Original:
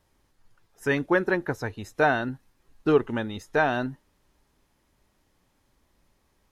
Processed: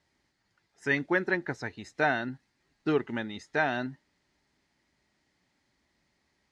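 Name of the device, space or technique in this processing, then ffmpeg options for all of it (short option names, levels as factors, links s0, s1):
car door speaker: -af "highpass=84,equalizer=f=100:t=q:w=4:g=-7,equalizer=f=490:t=q:w=4:g=-6,equalizer=f=1100:t=q:w=4:g=-5,equalizer=f=2000:t=q:w=4:g=8,equalizer=f=4500:t=q:w=4:g=6,lowpass=f=8100:w=0.5412,lowpass=f=8100:w=1.3066,volume=0.631"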